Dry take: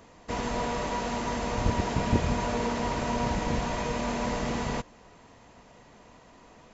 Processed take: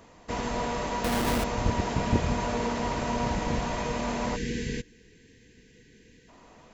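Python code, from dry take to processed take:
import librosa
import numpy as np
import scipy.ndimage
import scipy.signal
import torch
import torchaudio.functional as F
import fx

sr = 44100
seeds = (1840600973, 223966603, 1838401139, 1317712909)

y = fx.halfwave_hold(x, sr, at=(1.04, 1.44))
y = fx.spec_box(y, sr, start_s=4.36, length_s=1.93, low_hz=500.0, high_hz=1500.0, gain_db=-28)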